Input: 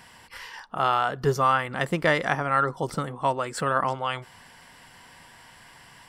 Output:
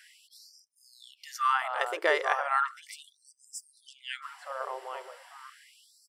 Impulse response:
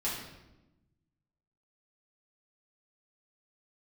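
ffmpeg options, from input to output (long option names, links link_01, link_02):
-filter_complex "[0:a]asplit=2[link_01][link_02];[link_02]adelay=845,lowpass=frequency=960:poles=1,volume=-5dB,asplit=2[link_03][link_04];[link_04]adelay=845,lowpass=frequency=960:poles=1,volume=0.48,asplit=2[link_05][link_06];[link_06]adelay=845,lowpass=frequency=960:poles=1,volume=0.48,asplit=2[link_07][link_08];[link_08]adelay=845,lowpass=frequency=960:poles=1,volume=0.48,asplit=2[link_09][link_10];[link_10]adelay=845,lowpass=frequency=960:poles=1,volume=0.48,asplit=2[link_11][link_12];[link_12]adelay=845,lowpass=frequency=960:poles=1,volume=0.48[link_13];[link_03][link_05][link_07][link_09][link_11][link_13]amix=inputs=6:normalize=0[link_14];[link_01][link_14]amix=inputs=2:normalize=0,afftfilt=real='re*gte(b*sr/1024,330*pow(5000/330,0.5+0.5*sin(2*PI*0.36*pts/sr)))':imag='im*gte(b*sr/1024,330*pow(5000/330,0.5+0.5*sin(2*PI*0.36*pts/sr)))':win_size=1024:overlap=0.75,volume=-3.5dB"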